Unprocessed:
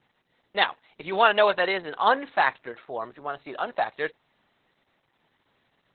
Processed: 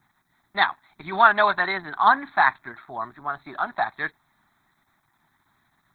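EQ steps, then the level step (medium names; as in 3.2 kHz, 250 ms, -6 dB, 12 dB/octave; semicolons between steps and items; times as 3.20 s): treble shelf 4 kHz +11.5 dB; static phaser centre 1.2 kHz, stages 4; +5.0 dB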